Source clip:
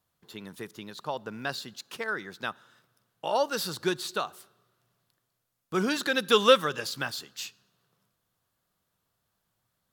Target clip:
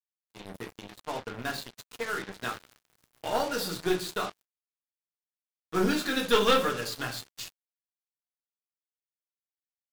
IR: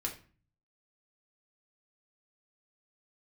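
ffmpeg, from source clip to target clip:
-filter_complex "[0:a]asettb=1/sr,asplit=3[s0][s1][s2];[s0]atrim=end=2.374[s3];[s1]atrim=start=2.37:end=3.34,asetpts=PTS-STARTPTS,afade=t=in:d=0.004:c=qsin,afade=t=out:st=0.966:d=0.004:c=qsin,aeval=exprs='val(0)+0.5*0.00794*sgn(val(0))':c=same[s4];[s2]atrim=start=3.336[s5];[s3][s4]acrossfade=d=0.004:c1=hsin:c2=qsin[s6];[s6][s5]acrossfade=d=0.004:c1=qsin:c2=hsin,lowshelf=f=240:g=3.5,asplit=2[s7][s8];[s8]adelay=250,lowpass=f=3100:p=1,volume=0.075,asplit=2[s9][s10];[s10]adelay=250,lowpass=f=3100:p=1,volume=0.34[s11];[s7][s9][s11]amix=inputs=3:normalize=0[s12];[1:a]atrim=start_sample=2205[s13];[s12][s13]afir=irnorm=-1:irlink=0,aeval=exprs='(tanh(5.62*val(0)+0.6)-tanh(0.6))/5.62':c=same,bandreject=f=50:t=h:w=6,bandreject=f=100:t=h:w=6,bandreject=f=150:t=h:w=6,bandreject=f=200:t=h:w=6,acrusher=bits=5:mix=0:aa=0.5"

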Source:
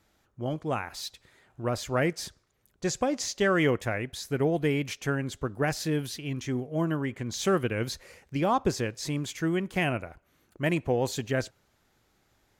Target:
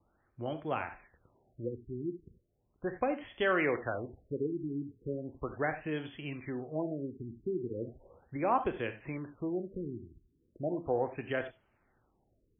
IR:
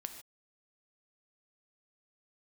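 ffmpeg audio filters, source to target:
-filter_complex "[0:a]acrossover=split=330|930|2500[s0][s1][s2][s3];[s0]acompressor=threshold=0.0126:ratio=12[s4];[s4][s1][s2][s3]amix=inputs=4:normalize=0[s5];[1:a]atrim=start_sample=2205,afade=t=out:st=0.25:d=0.01,atrim=end_sample=11466,atrim=end_sample=4410[s6];[s5][s6]afir=irnorm=-1:irlink=0,afftfilt=real='re*lt(b*sr/1024,390*pow(3500/390,0.5+0.5*sin(2*PI*0.37*pts/sr)))':imag='im*lt(b*sr/1024,390*pow(3500/390,0.5+0.5*sin(2*PI*0.37*pts/sr)))':win_size=1024:overlap=0.75"

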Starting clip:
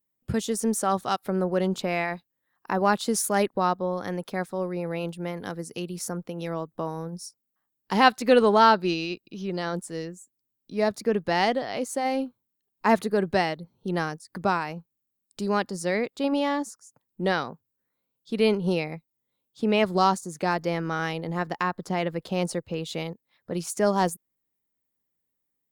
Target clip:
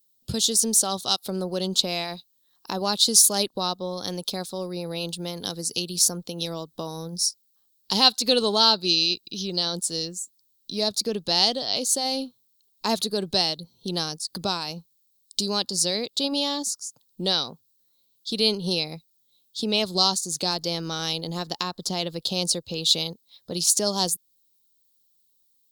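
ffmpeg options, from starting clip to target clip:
-filter_complex "[0:a]asplit=2[s0][s1];[s1]acompressor=threshold=0.0282:ratio=6,volume=1.41[s2];[s0][s2]amix=inputs=2:normalize=0,highshelf=f=2800:t=q:w=3:g=13,volume=0.473"

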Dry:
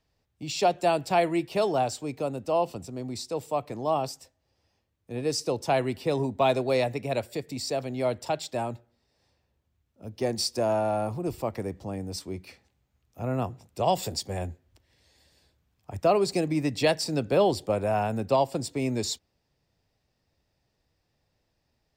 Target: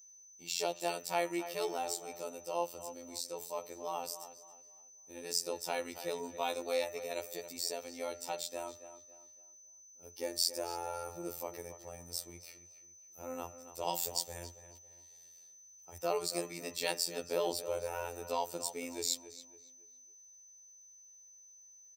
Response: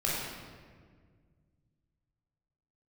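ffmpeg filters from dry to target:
-filter_complex "[0:a]aemphasis=mode=production:type=bsi,aecho=1:1:2.2:0.4,bandreject=f=152:t=h:w=4,bandreject=f=304:t=h:w=4,bandreject=f=456:t=h:w=4,bandreject=f=608:t=h:w=4,bandreject=f=760:t=h:w=4,bandreject=f=912:t=h:w=4,bandreject=f=1064:t=h:w=4,bandreject=f=1216:t=h:w=4,bandreject=f=1368:t=h:w=4,bandreject=f=1520:t=h:w=4,bandreject=f=1672:t=h:w=4,bandreject=f=1824:t=h:w=4,bandreject=f=1976:t=h:w=4,bandreject=f=2128:t=h:w=4,bandreject=f=2280:t=h:w=4,bandreject=f=2432:t=h:w=4,bandreject=f=2584:t=h:w=4,bandreject=f=2736:t=h:w=4,bandreject=f=2888:t=h:w=4,afftfilt=real='hypot(re,im)*cos(PI*b)':imag='0':win_size=2048:overlap=0.75,aeval=exprs='val(0)+0.00398*sin(2*PI*6100*n/s)':c=same,asplit=2[s0][s1];[s1]adelay=277,lowpass=f=3100:p=1,volume=0.251,asplit=2[s2][s3];[s3]adelay=277,lowpass=f=3100:p=1,volume=0.35,asplit=2[s4][s5];[s5]adelay=277,lowpass=f=3100:p=1,volume=0.35,asplit=2[s6][s7];[s7]adelay=277,lowpass=f=3100:p=1,volume=0.35[s8];[s2][s4][s6][s8]amix=inputs=4:normalize=0[s9];[s0][s9]amix=inputs=2:normalize=0,volume=0.447"

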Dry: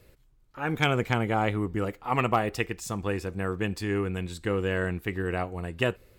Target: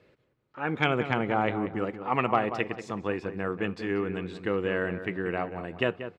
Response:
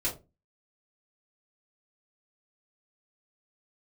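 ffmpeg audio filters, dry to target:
-filter_complex "[0:a]highpass=160,lowpass=3200,asplit=2[s0][s1];[s1]adelay=185,lowpass=f=1900:p=1,volume=0.316,asplit=2[s2][s3];[s3]adelay=185,lowpass=f=1900:p=1,volume=0.36,asplit=2[s4][s5];[s5]adelay=185,lowpass=f=1900:p=1,volume=0.36,asplit=2[s6][s7];[s7]adelay=185,lowpass=f=1900:p=1,volume=0.36[s8];[s2][s4][s6][s8]amix=inputs=4:normalize=0[s9];[s0][s9]amix=inputs=2:normalize=0"

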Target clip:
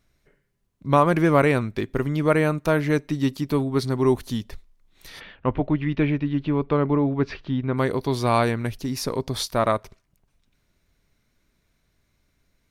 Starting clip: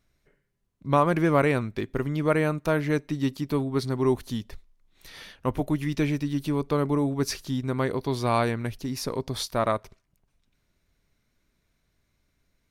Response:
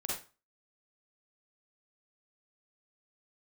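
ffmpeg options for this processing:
-filter_complex "[0:a]asplit=3[s0][s1][s2];[s0]afade=t=out:st=5.19:d=0.02[s3];[s1]lowpass=f=3100:w=0.5412,lowpass=f=3100:w=1.3066,afade=t=in:st=5.19:d=0.02,afade=t=out:st=7.76:d=0.02[s4];[s2]afade=t=in:st=7.76:d=0.02[s5];[s3][s4][s5]amix=inputs=3:normalize=0,volume=1.5"

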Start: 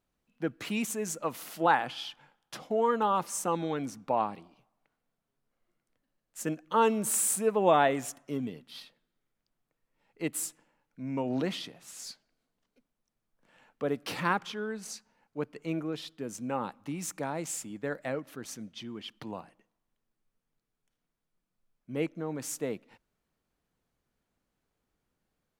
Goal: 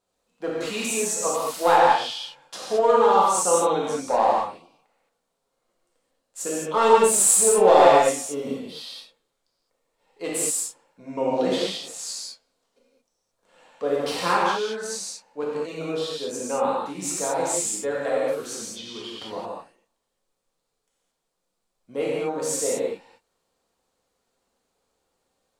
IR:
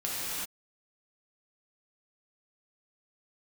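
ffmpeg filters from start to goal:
-filter_complex "[0:a]aeval=exprs='clip(val(0),-1,0.0668)':c=same,equalizer=f=125:t=o:w=1:g=-5,equalizer=f=500:t=o:w=1:g=10,equalizer=f=1000:t=o:w=1:g=8,equalizer=f=4000:t=o:w=1:g=8,equalizer=f=8000:t=o:w=1:g=11[s0];[1:a]atrim=start_sample=2205,afade=t=out:st=0.28:d=0.01,atrim=end_sample=12789[s1];[s0][s1]afir=irnorm=-1:irlink=0,volume=0.596"

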